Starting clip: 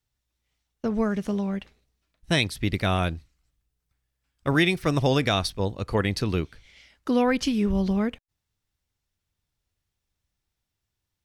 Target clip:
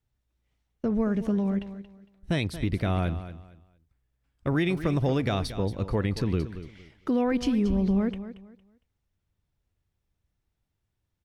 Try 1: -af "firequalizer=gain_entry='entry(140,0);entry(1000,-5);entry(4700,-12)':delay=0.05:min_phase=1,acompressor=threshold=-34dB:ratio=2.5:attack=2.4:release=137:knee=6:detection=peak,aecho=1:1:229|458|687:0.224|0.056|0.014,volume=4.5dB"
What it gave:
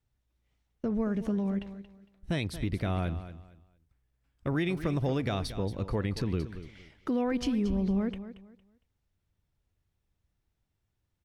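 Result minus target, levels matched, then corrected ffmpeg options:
compressor: peak gain reduction +4 dB
-af "firequalizer=gain_entry='entry(140,0);entry(1000,-5);entry(4700,-12)':delay=0.05:min_phase=1,acompressor=threshold=-27dB:ratio=2.5:attack=2.4:release=137:knee=6:detection=peak,aecho=1:1:229|458|687:0.224|0.056|0.014,volume=4.5dB"

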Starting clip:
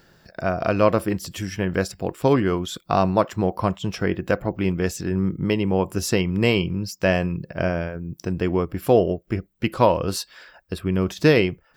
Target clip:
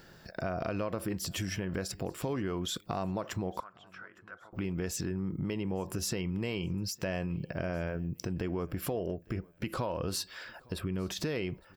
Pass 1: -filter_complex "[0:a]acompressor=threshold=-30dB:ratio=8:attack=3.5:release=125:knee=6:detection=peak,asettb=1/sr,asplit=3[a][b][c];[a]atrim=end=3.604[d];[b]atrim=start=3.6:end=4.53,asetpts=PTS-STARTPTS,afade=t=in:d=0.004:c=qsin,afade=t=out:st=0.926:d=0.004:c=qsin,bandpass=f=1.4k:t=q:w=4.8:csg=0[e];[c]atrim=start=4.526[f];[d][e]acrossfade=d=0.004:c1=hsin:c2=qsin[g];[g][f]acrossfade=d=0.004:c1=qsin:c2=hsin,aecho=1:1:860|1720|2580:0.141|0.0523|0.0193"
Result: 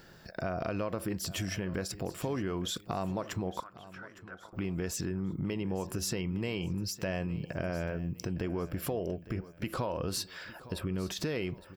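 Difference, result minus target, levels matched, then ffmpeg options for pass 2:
echo-to-direct +9.5 dB
-filter_complex "[0:a]acompressor=threshold=-30dB:ratio=8:attack=3.5:release=125:knee=6:detection=peak,asettb=1/sr,asplit=3[a][b][c];[a]atrim=end=3.604[d];[b]atrim=start=3.6:end=4.53,asetpts=PTS-STARTPTS,afade=t=in:d=0.004:c=qsin,afade=t=out:st=0.926:d=0.004:c=qsin,bandpass=f=1.4k:t=q:w=4.8:csg=0[e];[c]atrim=start=4.526[f];[d][e]acrossfade=d=0.004:c1=hsin:c2=qsin[g];[g][f]acrossfade=d=0.004:c1=qsin:c2=hsin,aecho=1:1:860|1720:0.0473|0.0175"

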